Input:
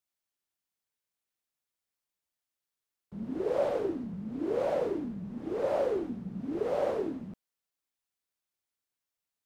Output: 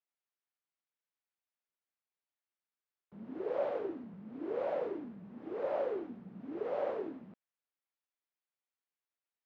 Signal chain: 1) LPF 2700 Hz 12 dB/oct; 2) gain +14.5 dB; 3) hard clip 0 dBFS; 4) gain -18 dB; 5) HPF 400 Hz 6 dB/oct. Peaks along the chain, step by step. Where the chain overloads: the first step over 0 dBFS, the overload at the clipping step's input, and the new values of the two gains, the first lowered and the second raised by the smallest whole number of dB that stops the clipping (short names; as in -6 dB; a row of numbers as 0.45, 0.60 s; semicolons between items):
-18.0, -3.5, -3.5, -21.5, -23.0 dBFS; no overload